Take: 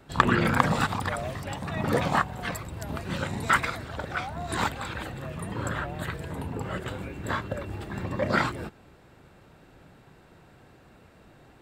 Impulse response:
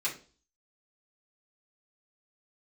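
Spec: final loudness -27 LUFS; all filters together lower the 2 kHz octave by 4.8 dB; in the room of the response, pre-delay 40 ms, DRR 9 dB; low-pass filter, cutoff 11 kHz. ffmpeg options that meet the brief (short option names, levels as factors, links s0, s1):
-filter_complex "[0:a]lowpass=11000,equalizer=f=2000:t=o:g=-6.5,asplit=2[s0][s1];[1:a]atrim=start_sample=2205,adelay=40[s2];[s1][s2]afir=irnorm=-1:irlink=0,volume=0.188[s3];[s0][s3]amix=inputs=2:normalize=0,volume=1.5"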